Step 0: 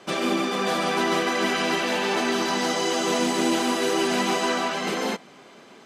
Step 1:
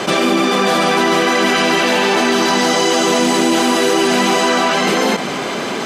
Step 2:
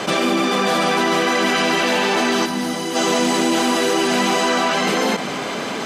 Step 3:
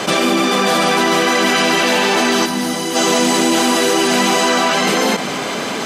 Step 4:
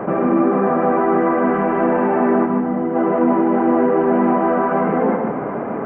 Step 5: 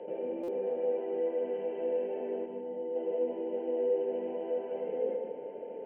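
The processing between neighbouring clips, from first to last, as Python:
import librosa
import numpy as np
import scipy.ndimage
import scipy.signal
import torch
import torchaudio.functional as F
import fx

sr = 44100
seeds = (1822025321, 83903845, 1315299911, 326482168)

y1 = fx.env_flatten(x, sr, amount_pct=70)
y1 = y1 * 10.0 ** (7.5 / 20.0)
y2 = fx.notch(y1, sr, hz=370.0, q=12.0)
y2 = fx.spec_box(y2, sr, start_s=2.45, length_s=0.5, low_hz=330.0, high_hz=8600.0, gain_db=-8)
y2 = y2 * 10.0 ** (-3.5 / 20.0)
y3 = fx.high_shelf(y2, sr, hz=5600.0, db=5.5)
y3 = y3 * 10.0 ** (3.0 / 20.0)
y4 = scipy.ndimage.gaussian_filter1d(y3, 6.8, mode='constant')
y4 = y4 + 10.0 ** (-4.5 / 20.0) * np.pad(y4, (int(150 * sr / 1000.0), 0))[:len(y4)]
y5 = y4 + 10.0 ** (-22.0 / 20.0) * np.sin(2.0 * np.pi * 890.0 * np.arange(len(y4)) / sr)
y5 = fx.double_bandpass(y5, sr, hz=1200.0, octaves=2.6)
y5 = fx.buffer_glitch(y5, sr, at_s=(0.43,), block=256, repeats=8)
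y5 = y5 * 10.0 ** (-8.0 / 20.0)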